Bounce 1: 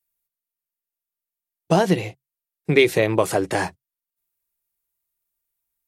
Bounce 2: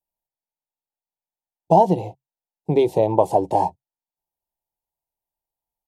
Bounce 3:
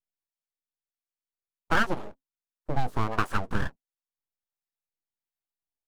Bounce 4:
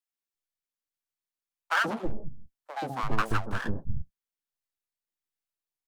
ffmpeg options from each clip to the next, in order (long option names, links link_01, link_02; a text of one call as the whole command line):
ffmpeg -i in.wav -af "firequalizer=gain_entry='entry(420,0);entry(900,12);entry(1300,-29);entry(3000,-12)':delay=0.05:min_phase=1,volume=-1dB" out.wav
ffmpeg -i in.wav -filter_complex "[0:a]aeval=exprs='abs(val(0))':channel_layout=same,acrossover=split=600[link_01][link_02];[link_01]aeval=exprs='val(0)*(1-0.5/2+0.5/2*cos(2*PI*1.4*n/s))':channel_layout=same[link_03];[link_02]aeval=exprs='val(0)*(1-0.5/2-0.5/2*cos(2*PI*1.4*n/s))':channel_layout=same[link_04];[link_03][link_04]amix=inputs=2:normalize=0,volume=-4.5dB" out.wav
ffmpeg -i in.wav -filter_complex "[0:a]acrossover=split=160|650[link_01][link_02][link_03];[link_02]adelay=130[link_04];[link_01]adelay=340[link_05];[link_05][link_04][link_03]amix=inputs=3:normalize=0" out.wav